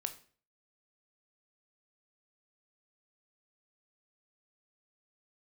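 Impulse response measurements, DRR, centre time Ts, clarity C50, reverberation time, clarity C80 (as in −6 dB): 7.5 dB, 8 ms, 13.5 dB, 0.45 s, 17.5 dB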